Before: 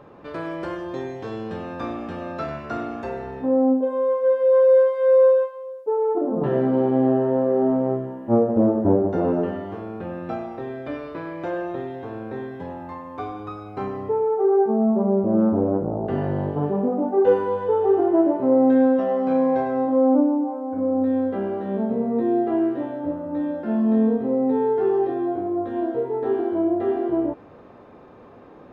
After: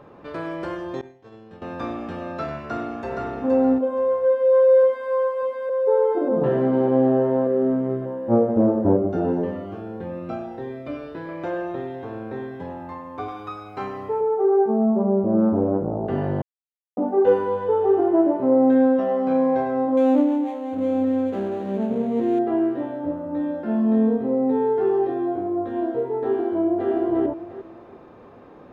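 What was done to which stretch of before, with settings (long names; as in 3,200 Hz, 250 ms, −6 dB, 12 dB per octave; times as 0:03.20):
0:01.01–0:01.62: downward expander −22 dBFS
0:02.63–0:03.31: delay throw 470 ms, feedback 25%, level −3.5 dB
0:04.23–0:05.10: delay throw 590 ms, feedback 70%, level −3 dB
0:07.47–0:08.02: parametric band 810 Hz −12 dB 0.61 octaves
0:08.97–0:11.29: phaser whose notches keep moving one way rising 1.6 Hz
0:13.28–0:14.21: tilt shelving filter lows −5.5 dB, about 750 Hz
0:14.86–0:15.44: low-pass filter 2,800 Hz 6 dB per octave
0:16.42–0:16.97: silence
0:19.97–0:22.39: running median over 25 samples
0:26.43–0:26.91: delay throw 350 ms, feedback 30%, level −3.5 dB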